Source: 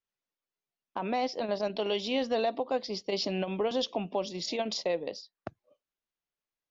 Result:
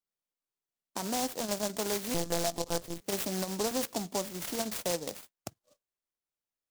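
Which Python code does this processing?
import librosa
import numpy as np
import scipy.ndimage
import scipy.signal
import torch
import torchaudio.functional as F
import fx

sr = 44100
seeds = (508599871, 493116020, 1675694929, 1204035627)

y = fx.envelope_flatten(x, sr, power=0.6)
y = fx.lpc_monotone(y, sr, seeds[0], pitch_hz=170.0, order=16, at=(2.14, 3.02))
y = fx.noise_mod_delay(y, sr, seeds[1], noise_hz=5600.0, depth_ms=0.13)
y = F.gain(torch.from_numpy(y), -2.0).numpy()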